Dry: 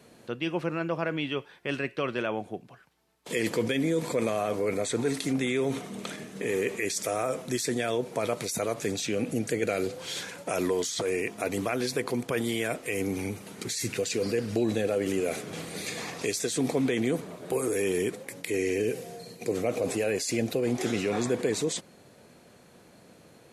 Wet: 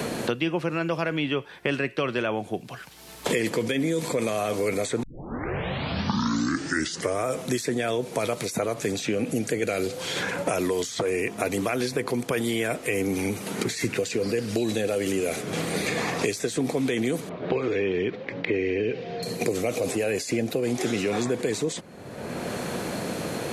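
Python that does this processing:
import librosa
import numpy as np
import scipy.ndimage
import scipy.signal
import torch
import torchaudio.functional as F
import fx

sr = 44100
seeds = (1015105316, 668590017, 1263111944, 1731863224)

y = fx.gaussian_blur(x, sr, sigma=2.9, at=(17.29, 19.23))
y = fx.edit(y, sr, fx.tape_start(start_s=5.03, length_s=2.26), tone=tone)
y = fx.band_squash(y, sr, depth_pct=100)
y = y * librosa.db_to_amplitude(2.0)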